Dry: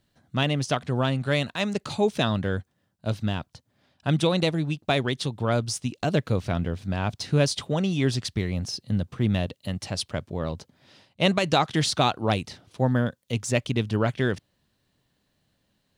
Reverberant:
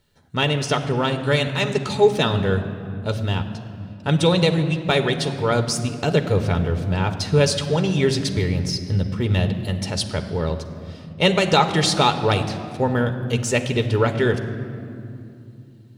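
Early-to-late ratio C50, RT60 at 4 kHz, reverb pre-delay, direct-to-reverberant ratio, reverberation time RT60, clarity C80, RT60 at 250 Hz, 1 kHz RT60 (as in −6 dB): 10.0 dB, 1.5 s, 5 ms, 6.0 dB, 2.7 s, 11.0 dB, 4.3 s, 2.4 s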